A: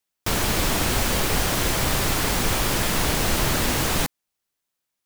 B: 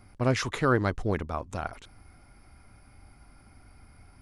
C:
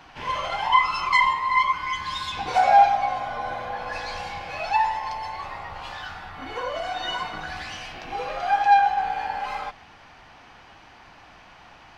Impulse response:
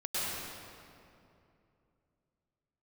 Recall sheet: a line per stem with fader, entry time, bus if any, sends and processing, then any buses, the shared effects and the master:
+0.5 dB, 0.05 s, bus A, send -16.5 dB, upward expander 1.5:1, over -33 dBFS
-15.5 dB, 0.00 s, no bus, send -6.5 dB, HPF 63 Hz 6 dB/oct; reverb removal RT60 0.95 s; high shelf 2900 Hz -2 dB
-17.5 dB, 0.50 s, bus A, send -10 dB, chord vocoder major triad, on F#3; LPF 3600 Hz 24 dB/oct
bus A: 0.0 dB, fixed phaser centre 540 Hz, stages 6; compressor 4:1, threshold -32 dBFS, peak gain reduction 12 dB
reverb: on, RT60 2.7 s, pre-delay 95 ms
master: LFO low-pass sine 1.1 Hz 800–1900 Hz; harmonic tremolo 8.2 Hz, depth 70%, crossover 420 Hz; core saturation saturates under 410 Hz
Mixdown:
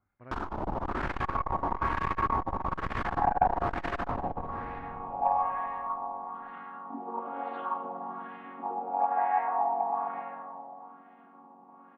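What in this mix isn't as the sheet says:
stem B -15.5 dB -> -26.5 dB; stem C -17.5 dB -> -7.5 dB; master: missing harmonic tremolo 8.2 Hz, depth 70%, crossover 420 Hz

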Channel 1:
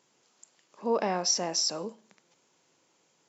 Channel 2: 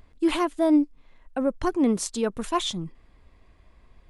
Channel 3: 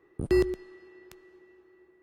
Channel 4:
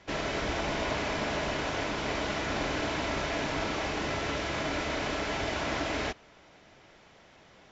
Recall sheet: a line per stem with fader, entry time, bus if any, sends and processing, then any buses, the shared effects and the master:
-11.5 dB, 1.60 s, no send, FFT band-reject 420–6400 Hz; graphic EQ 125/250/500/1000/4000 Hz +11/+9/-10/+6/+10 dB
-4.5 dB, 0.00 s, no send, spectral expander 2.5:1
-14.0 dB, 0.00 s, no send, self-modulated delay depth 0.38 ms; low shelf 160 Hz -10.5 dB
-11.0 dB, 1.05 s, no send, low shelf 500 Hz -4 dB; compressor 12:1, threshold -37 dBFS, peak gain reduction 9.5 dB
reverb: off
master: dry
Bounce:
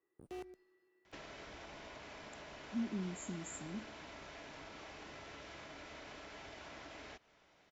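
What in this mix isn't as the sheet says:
stem 1: entry 1.60 s -> 1.90 s; stem 2: muted; stem 3 -14.0 dB -> -21.5 dB

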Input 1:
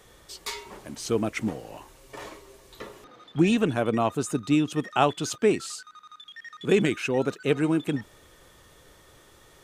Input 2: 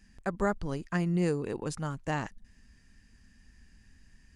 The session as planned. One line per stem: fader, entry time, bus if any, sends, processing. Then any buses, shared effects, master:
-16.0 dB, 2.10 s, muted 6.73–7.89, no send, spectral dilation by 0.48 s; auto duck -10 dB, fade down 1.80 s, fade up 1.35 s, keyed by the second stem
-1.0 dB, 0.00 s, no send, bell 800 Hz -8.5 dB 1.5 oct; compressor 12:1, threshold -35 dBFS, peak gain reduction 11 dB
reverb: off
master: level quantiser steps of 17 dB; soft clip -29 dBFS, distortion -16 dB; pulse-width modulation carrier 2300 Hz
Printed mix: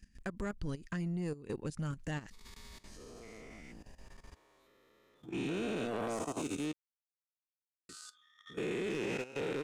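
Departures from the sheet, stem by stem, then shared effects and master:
stem 2 -1.0 dB -> +6.5 dB; master: missing pulse-width modulation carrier 2300 Hz

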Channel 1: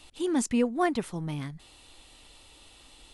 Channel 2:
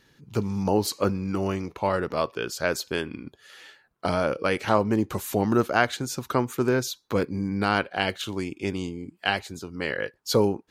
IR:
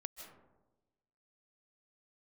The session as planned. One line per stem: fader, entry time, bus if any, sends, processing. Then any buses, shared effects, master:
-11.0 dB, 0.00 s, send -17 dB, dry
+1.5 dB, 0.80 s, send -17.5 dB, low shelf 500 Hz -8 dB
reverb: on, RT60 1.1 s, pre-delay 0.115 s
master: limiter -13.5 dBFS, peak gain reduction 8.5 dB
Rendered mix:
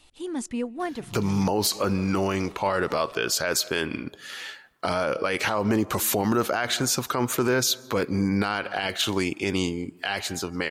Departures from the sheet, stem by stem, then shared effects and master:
stem 1 -11.0 dB -> -5.0 dB; stem 2 +1.5 dB -> +10.5 dB

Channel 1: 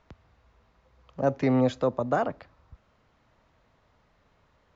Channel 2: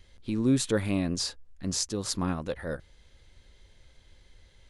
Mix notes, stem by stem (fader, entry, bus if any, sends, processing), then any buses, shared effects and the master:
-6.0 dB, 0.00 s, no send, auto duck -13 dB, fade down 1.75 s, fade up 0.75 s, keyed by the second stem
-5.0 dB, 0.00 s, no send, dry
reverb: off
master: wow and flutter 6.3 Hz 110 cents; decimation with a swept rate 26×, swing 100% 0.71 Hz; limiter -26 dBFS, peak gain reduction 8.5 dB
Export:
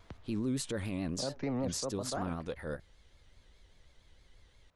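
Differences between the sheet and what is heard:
stem 1 -6.0 dB -> +1.5 dB; master: missing decimation with a swept rate 26×, swing 100% 0.71 Hz

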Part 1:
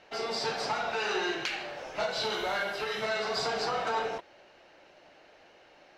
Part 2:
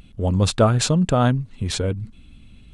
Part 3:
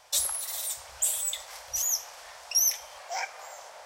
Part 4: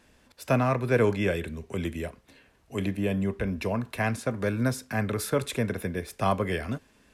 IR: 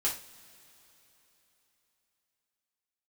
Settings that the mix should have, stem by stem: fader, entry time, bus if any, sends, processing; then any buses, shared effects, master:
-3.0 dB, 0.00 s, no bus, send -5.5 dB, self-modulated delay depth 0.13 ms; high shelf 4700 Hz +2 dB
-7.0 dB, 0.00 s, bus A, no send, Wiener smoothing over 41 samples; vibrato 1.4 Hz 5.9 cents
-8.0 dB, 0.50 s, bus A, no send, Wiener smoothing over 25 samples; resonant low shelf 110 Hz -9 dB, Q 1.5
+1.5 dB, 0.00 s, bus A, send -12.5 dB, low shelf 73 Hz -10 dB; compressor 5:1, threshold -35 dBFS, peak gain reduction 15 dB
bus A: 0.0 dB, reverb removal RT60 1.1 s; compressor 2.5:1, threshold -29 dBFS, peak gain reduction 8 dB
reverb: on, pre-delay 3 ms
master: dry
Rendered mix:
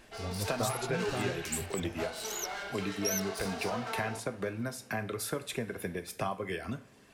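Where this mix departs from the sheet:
stem 1 -3.0 dB -> -12.5 dB; stem 2 -7.0 dB -> -17.0 dB

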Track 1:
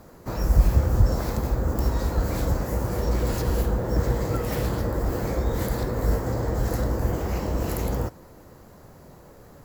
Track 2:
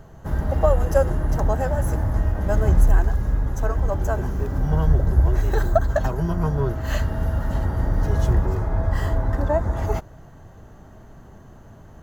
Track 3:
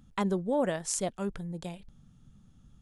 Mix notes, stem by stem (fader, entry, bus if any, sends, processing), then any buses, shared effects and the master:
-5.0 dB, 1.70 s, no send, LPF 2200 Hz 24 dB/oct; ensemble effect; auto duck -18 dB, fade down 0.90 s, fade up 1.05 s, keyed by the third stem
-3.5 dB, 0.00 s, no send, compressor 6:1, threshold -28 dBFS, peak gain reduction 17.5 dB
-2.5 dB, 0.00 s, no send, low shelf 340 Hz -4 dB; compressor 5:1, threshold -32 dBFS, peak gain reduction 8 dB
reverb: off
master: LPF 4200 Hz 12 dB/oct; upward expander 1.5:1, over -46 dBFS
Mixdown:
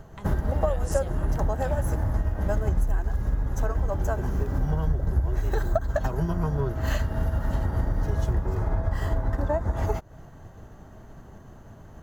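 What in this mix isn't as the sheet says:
stem 1: muted; stem 2 -3.5 dB -> +8.0 dB; master: missing LPF 4200 Hz 12 dB/oct

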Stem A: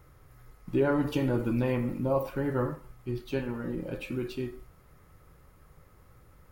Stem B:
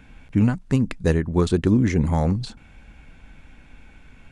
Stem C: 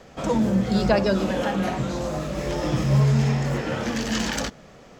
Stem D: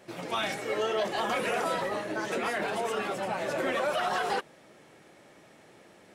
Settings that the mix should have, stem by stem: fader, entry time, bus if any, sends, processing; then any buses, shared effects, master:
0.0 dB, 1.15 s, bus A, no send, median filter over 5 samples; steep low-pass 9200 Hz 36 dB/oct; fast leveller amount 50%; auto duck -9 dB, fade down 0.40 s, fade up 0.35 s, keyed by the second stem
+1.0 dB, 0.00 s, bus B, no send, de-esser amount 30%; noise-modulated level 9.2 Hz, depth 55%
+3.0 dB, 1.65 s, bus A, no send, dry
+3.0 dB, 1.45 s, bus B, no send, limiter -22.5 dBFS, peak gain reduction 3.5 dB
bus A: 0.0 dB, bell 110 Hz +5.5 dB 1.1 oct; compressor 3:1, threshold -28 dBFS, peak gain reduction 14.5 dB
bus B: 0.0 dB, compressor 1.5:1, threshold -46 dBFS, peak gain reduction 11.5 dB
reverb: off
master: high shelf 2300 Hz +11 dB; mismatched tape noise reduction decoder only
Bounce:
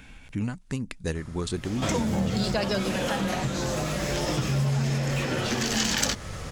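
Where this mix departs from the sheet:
stem A: missing median filter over 5 samples; stem D +3.0 dB -> -5.5 dB; master: missing mismatched tape noise reduction decoder only

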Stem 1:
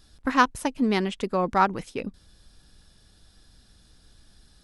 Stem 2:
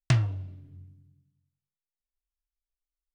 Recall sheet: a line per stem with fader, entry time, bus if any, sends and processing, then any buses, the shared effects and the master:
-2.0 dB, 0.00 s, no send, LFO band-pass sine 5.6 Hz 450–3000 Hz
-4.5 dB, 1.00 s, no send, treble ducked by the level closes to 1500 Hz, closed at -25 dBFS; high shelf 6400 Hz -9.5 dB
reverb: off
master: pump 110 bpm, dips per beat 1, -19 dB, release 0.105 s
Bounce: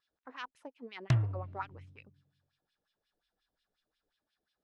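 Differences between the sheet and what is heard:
stem 1 -2.0 dB -> -13.5 dB; master: missing pump 110 bpm, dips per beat 1, -19 dB, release 0.105 s

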